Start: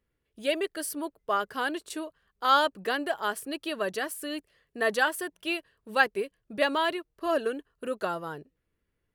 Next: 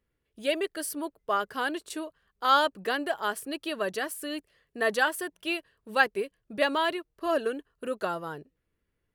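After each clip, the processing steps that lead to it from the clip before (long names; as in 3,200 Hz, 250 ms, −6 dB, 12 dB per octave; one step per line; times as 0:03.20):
no processing that can be heard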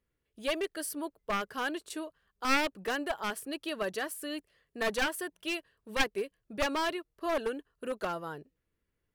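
wavefolder on the positive side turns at −23.5 dBFS
level −3 dB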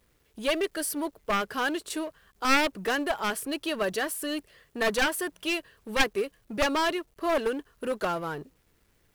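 mu-law and A-law mismatch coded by mu
level +4 dB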